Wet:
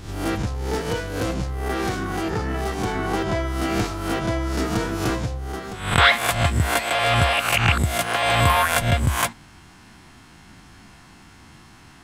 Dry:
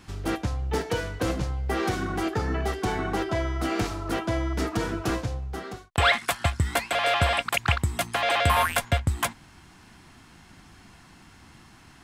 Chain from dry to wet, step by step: spectral swells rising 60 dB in 0.59 s; 0.43–2.95 tube stage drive 17 dB, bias 0.3; gain +2 dB

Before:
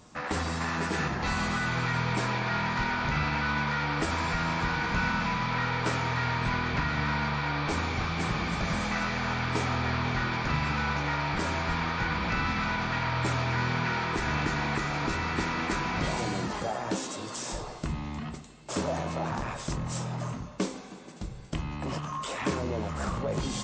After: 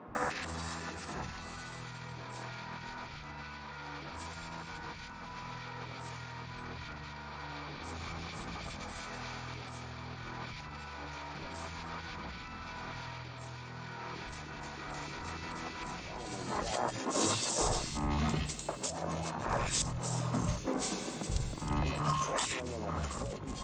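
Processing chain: high shelf 7700 Hz +12 dB; negative-ratio compressor -36 dBFS, ratio -0.5; three bands offset in time mids, lows, highs 80/150 ms, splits 170/1900 Hz

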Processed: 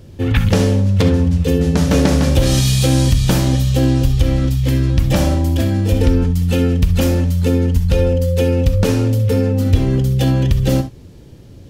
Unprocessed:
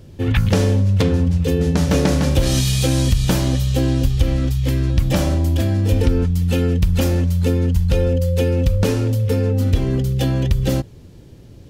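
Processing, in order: non-linear reverb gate 90 ms rising, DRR 9.5 dB; gain +2 dB

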